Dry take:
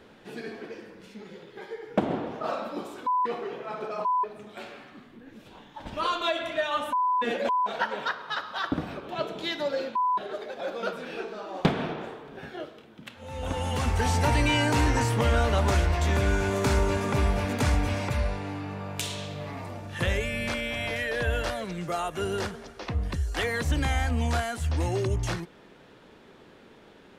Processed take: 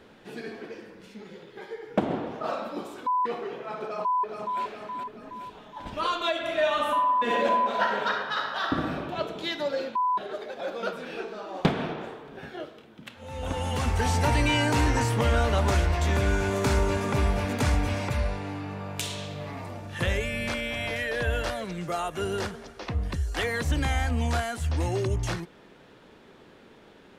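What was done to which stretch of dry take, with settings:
0:03.86–0:04.61: delay throw 420 ms, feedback 55%, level −4.5 dB
0:06.39–0:09.01: thrown reverb, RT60 1.2 s, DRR 0 dB

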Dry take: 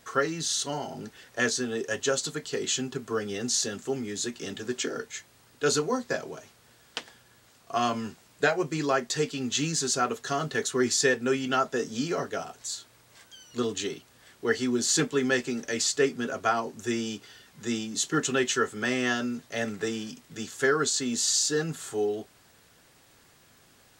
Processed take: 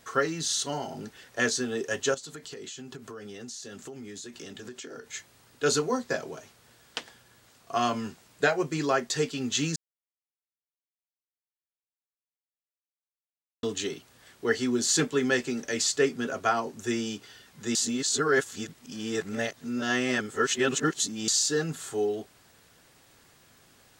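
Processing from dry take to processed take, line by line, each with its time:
0:02.14–0:05.13: downward compressor 8 to 1, threshold −38 dBFS
0:09.76–0:13.63: silence
0:17.75–0:21.28: reverse

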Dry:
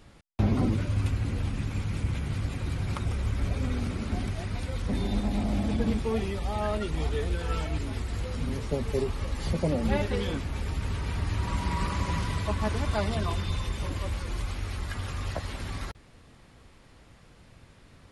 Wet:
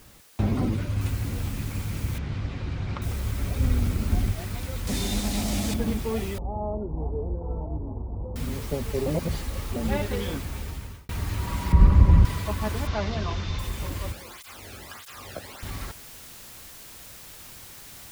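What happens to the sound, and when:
0:01.01: noise floor change −55 dB −45 dB
0:02.18–0:03.02: Bessel low-pass filter 3,600 Hz, order 4
0:03.58–0:04.32: low-shelf EQ 120 Hz +10.5 dB
0:04.87–0:05.74: parametric band 6,400 Hz +12 dB 2.5 octaves
0:06.38–0:08.36: elliptic low-pass filter 930 Hz, stop band 50 dB
0:09.06–0:09.76: reverse
0:10.27–0:11.09: fade out equal-power
0:11.72–0:12.25: spectral tilt −4 dB per octave
0:12.87–0:13.59: linear delta modulator 32 kbit/s, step −37 dBFS
0:14.12–0:15.63: through-zero flanger with one copy inverted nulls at 1.6 Hz, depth 1.1 ms

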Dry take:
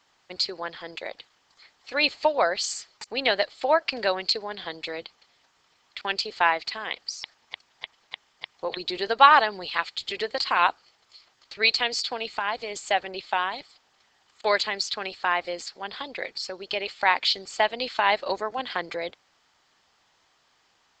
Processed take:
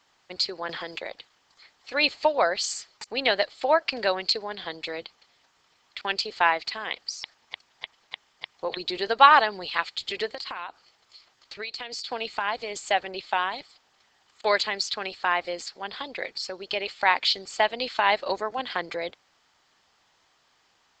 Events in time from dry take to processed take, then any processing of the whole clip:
0:00.69–0:01.11: multiband upward and downward compressor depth 100%
0:10.31–0:12.09: downward compressor 8 to 1, threshold −31 dBFS

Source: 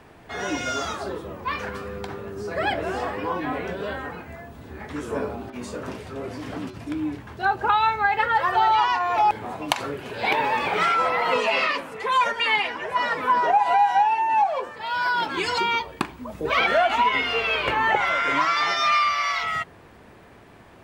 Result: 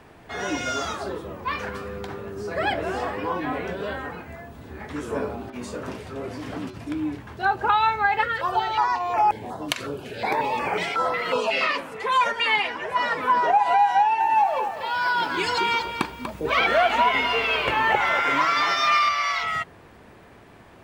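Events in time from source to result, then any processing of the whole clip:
0:01.78–0:02.44: hard clipping −26.5 dBFS
0:08.23–0:11.61: notch on a step sequencer 5.5 Hz 840–3,700 Hz
0:13.96–0:19.09: feedback echo at a low word length 241 ms, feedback 35%, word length 8 bits, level −9 dB

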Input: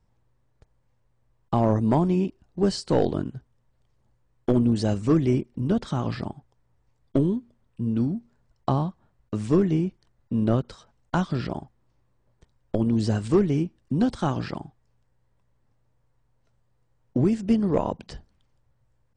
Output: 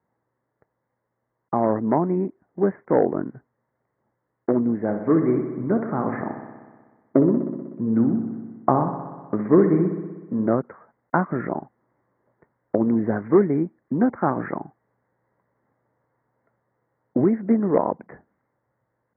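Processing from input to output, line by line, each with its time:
0:04.77–0:10.47: delay with a low-pass on its return 62 ms, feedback 73%, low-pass 3,100 Hz, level −9 dB
whole clip: Butterworth low-pass 2,100 Hz 96 dB per octave; speech leveller 2 s; high-pass filter 240 Hz 12 dB per octave; level +4.5 dB

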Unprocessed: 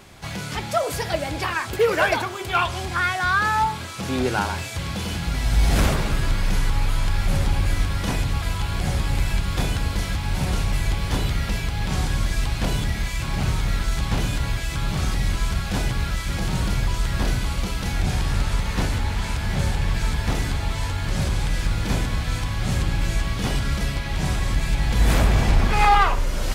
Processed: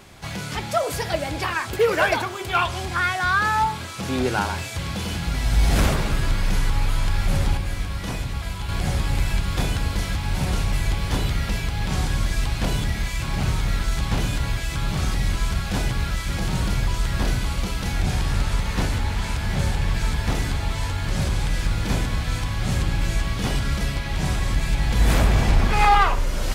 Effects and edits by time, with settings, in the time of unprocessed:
0:01.92–0:02.61: floating-point word with a short mantissa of 6 bits
0:07.57–0:08.69: tuned comb filter 61 Hz, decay 0.21 s, mix 70%

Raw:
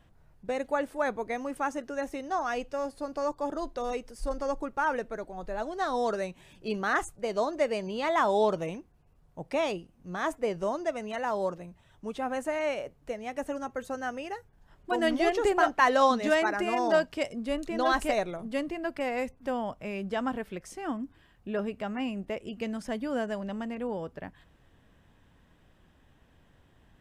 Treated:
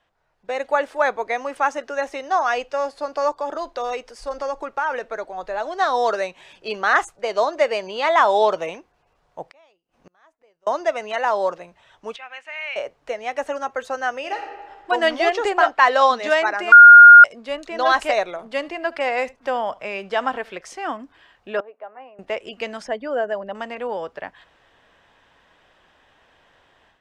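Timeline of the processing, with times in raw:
0:03.30–0:05.80: downward compressor 4 to 1, threshold −30 dBFS
0:09.43–0:10.67: gate with flip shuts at −37 dBFS, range −36 dB
0:12.16–0:12.76: resonant band-pass 2,500 Hz, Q 3.1
0:14.20–0:14.90: thrown reverb, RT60 1.5 s, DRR 3.5 dB
0:15.59–0:16.16: notch filter 6,100 Hz, Q 9.6
0:16.72–0:17.24: beep over 1,420 Hz −9 dBFS
0:18.28–0:20.61: single-tap delay 74 ms −22 dB
0:21.60–0:22.19: four-pole ladder band-pass 670 Hz, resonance 25%
0:22.84–0:23.55: spectral envelope exaggerated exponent 1.5
whole clip: three-way crossover with the lows and the highs turned down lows −19 dB, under 460 Hz, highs −17 dB, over 6,700 Hz; automatic gain control gain up to 11.5 dB

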